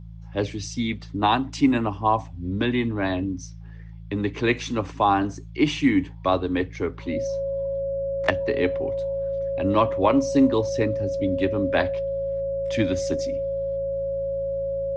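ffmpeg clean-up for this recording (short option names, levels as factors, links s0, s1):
-af "bandreject=f=55:t=h:w=4,bandreject=f=110:t=h:w=4,bandreject=f=165:t=h:w=4,bandreject=f=550:w=30"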